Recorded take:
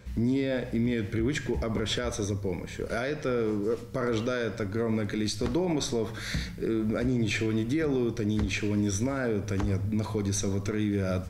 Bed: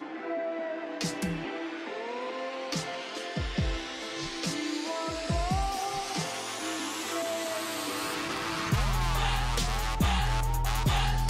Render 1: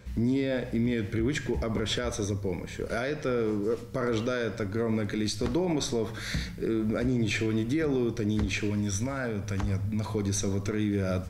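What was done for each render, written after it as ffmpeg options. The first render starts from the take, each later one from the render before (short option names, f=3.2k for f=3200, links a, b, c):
-filter_complex "[0:a]asettb=1/sr,asplit=3[a][b][c];[a]atrim=end=8.704[d];[b]atrim=start=8.7:end=10.06,asetpts=PTS-STARTPTS,afade=t=in:d=0.004:c=qsin,afade=t=out:st=1.356:d=0.004:c=qsin,equalizer=f=360:t=o:w=0.77:g=-9[e];[c]atrim=start=10.056[f];[d][e]acrossfade=d=0.004:c1=hsin:c2=qsin[g];[g][f]acrossfade=d=0.004:c1=qsin:c2=hsin"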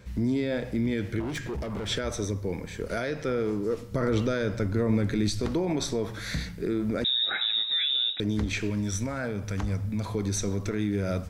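-filter_complex "[0:a]asettb=1/sr,asplit=3[a][b][c];[a]atrim=end=1.204[d];[b]atrim=start=1.2:end=1.88,asetpts=PTS-STARTPTS,afade=t=in:d=0.004:c=qsin,afade=t=out:st=0.676:d=0.004:c=qsin,volume=29.5dB,asoftclip=hard,volume=-29.5dB[e];[c]atrim=start=1.876[f];[d][e]acrossfade=d=0.004:c1=hsin:c2=qsin[g];[g][f]acrossfade=d=0.004:c1=qsin:c2=hsin,asettb=1/sr,asplit=3[h][i][j];[h]atrim=end=3.914[k];[i]atrim=start=3.91:end=5.4,asetpts=PTS-STARTPTS,afade=t=in:d=0.004:c=qsin,afade=t=out:st=1.486:d=0.004:c=qsin,lowshelf=f=230:g=7.5[l];[j]atrim=start=5.396[m];[k][l]acrossfade=d=0.004:c1=hsin:c2=qsin[n];[n][m]acrossfade=d=0.004:c1=qsin:c2=hsin,asettb=1/sr,asplit=3[o][p][q];[o]atrim=end=7.044[r];[p]atrim=start=7.04:end=8.2,asetpts=PTS-STARTPTS,afade=t=in:d=0.004:c=qsin,afade=t=out:st=1.156:d=0.004:c=qsin,lowpass=f=3.3k:t=q:w=0.5098,lowpass=f=3.3k:t=q:w=0.6013,lowpass=f=3.3k:t=q:w=0.9,lowpass=f=3.3k:t=q:w=2.563,afreqshift=-3900[s];[q]atrim=start=8.196[t];[r][s]acrossfade=d=0.004:c1=hsin:c2=qsin[u];[u][t]acrossfade=d=0.004:c1=qsin:c2=hsin"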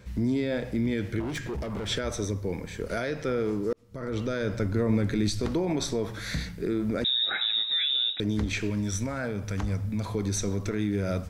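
-filter_complex "[0:a]asplit=2[a][b];[a]atrim=end=3.73,asetpts=PTS-STARTPTS,afade=t=out:st=3.726:d=0.004:c=hsin[c];[b]atrim=start=3.73,asetpts=PTS-STARTPTS,afade=t=in:d=0.8[d];[c][d]concat=n=2:v=0:a=1"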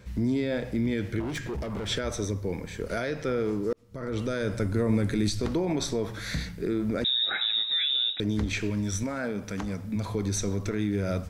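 -filter_complex "[0:a]asettb=1/sr,asplit=3[a][b][c];[a]atrim=end=4.184[d];[b]atrim=start=4.18:end=5.29,asetpts=PTS-STARTPTS,afade=t=in:d=0.004:c=qsin,afade=t=out:st=1.106:d=0.004:c=qsin,equalizer=f=9.3k:t=o:w=0.52:g=10[e];[c]atrim=start=5.286[f];[d][e]acrossfade=d=0.004:c1=hsin:c2=qsin[g];[g][f]acrossfade=d=0.004:c1=qsin:c2=hsin,asettb=1/sr,asplit=3[h][i][j];[h]atrim=end=9.034[k];[i]atrim=start=9.03:end=9.96,asetpts=PTS-STARTPTS,afade=t=in:d=0.004:c=qsin,afade=t=out:st=0.926:d=0.004:c=qsin,lowshelf=f=150:t=q:w=1.5:g=-7.5[l];[j]atrim=start=9.956[m];[k][l]acrossfade=d=0.004:c1=hsin:c2=qsin[n];[n][m]acrossfade=d=0.004:c1=qsin:c2=hsin"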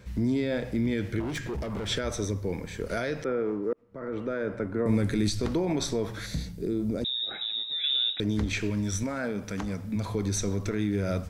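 -filter_complex "[0:a]asettb=1/sr,asplit=3[a][b][c];[a]atrim=end=3.244[d];[b]atrim=start=3.24:end=4.86,asetpts=PTS-STARTPTS,afade=t=in:d=0.004:c=qsin,afade=t=out:st=1.616:d=0.004:c=qsin,acrossover=split=200 2200:gain=0.251 1 0.0891[e][f][g];[e][f][g]amix=inputs=3:normalize=0[h];[c]atrim=start=4.856[i];[d][h]acrossfade=d=0.004:c1=hsin:c2=qsin[j];[j][i]acrossfade=d=0.004:c1=qsin:c2=hsin,asettb=1/sr,asplit=3[k][l][m];[k]atrim=end=6.264[n];[l]atrim=start=6.26:end=7.84,asetpts=PTS-STARTPTS,afade=t=in:d=0.004:c=qsin,afade=t=out:st=1.576:d=0.004:c=qsin,equalizer=f=1.7k:w=0.79:g=-13.5[o];[m]atrim=start=7.836[p];[n][o]acrossfade=d=0.004:c1=hsin:c2=qsin[q];[q][p]acrossfade=d=0.004:c1=qsin:c2=hsin"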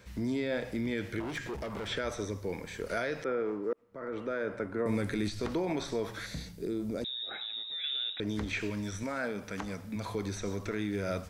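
-filter_complex "[0:a]acrossover=split=2900[a][b];[b]acompressor=threshold=-45dB:ratio=4:attack=1:release=60[c];[a][c]amix=inputs=2:normalize=0,lowshelf=f=320:g=-10"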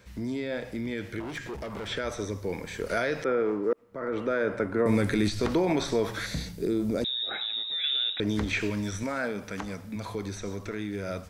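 -af "dynaudnorm=f=310:g=17:m=7dB"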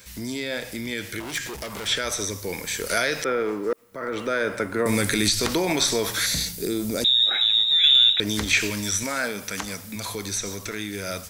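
-af "crystalizer=i=7.5:c=0,aeval=exprs='0.473*(cos(1*acos(clip(val(0)/0.473,-1,1)))-cos(1*PI/2))+0.0299*(cos(2*acos(clip(val(0)/0.473,-1,1)))-cos(2*PI/2))+0.015*(cos(4*acos(clip(val(0)/0.473,-1,1)))-cos(4*PI/2))+0.00668*(cos(6*acos(clip(val(0)/0.473,-1,1)))-cos(6*PI/2))':c=same"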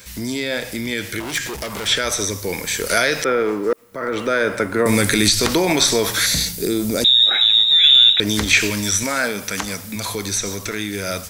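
-af "volume=6dB,alimiter=limit=-2dB:level=0:latency=1"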